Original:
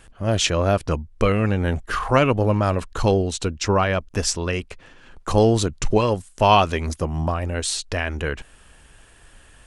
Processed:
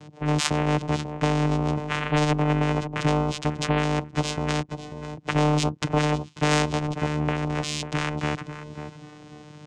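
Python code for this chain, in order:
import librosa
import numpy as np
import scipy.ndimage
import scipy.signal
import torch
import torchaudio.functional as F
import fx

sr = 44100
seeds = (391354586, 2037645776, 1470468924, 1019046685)

y = fx.low_shelf(x, sr, hz=170.0, db=7.5)
y = fx.env_phaser(y, sr, low_hz=180.0, high_hz=1600.0, full_db=-14.5)
y = fx.vocoder(y, sr, bands=4, carrier='saw', carrier_hz=150.0)
y = fx.echo_feedback(y, sr, ms=542, feedback_pct=21, wet_db=-18)
y = fx.spectral_comp(y, sr, ratio=2.0)
y = y * librosa.db_to_amplitude(2.0)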